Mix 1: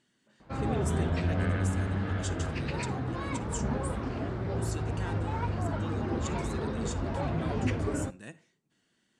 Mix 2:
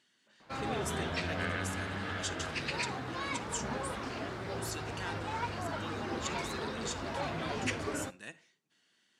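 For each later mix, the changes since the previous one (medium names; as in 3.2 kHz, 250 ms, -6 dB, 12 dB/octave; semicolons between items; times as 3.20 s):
speech: add peaking EQ 8.5 kHz -12 dB 0.92 oct; master: add tilt EQ +3.5 dB/octave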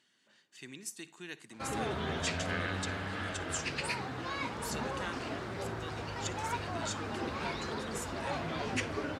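background: entry +1.10 s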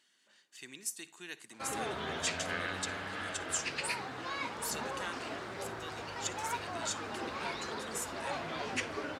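speech: add treble shelf 8.4 kHz +9 dB; master: add bass shelf 230 Hz -11.5 dB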